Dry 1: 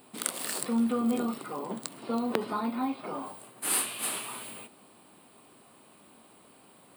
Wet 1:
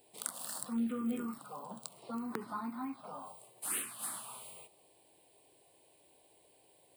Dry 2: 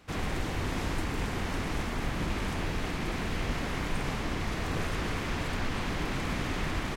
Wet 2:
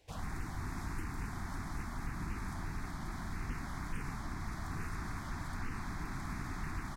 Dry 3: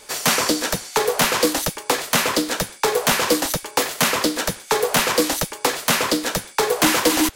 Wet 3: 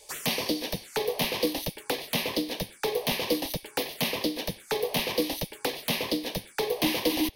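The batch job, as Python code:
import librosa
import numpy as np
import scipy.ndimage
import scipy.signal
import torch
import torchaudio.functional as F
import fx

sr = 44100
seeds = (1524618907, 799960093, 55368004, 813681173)

y = fx.env_phaser(x, sr, low_hz=210.0, high_hz=1400.0, full_db=-21.0)
y = F.gain(torch.from_numpy(y), -6.5).numpy()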